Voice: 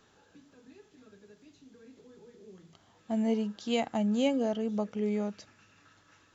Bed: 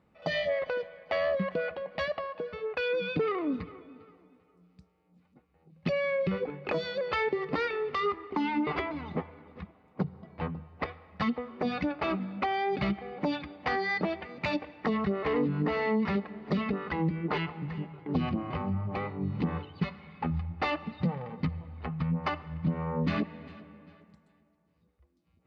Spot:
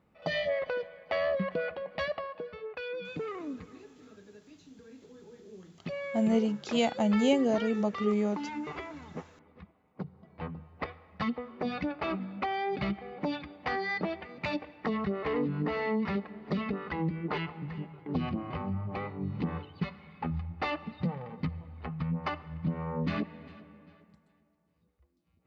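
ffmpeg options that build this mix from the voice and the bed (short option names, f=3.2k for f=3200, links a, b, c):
-filter_complex "[0:a]adelay=3050,volume=2.5dB[a];[1:a]volume=4.5dB,afade=t=out:st=2.1:d=0.7:silence=0.446684,afade=t=in:st=10.15:d=0.55:silence=0.530884[b];[a][b]amix=inputs=2:normalize=0"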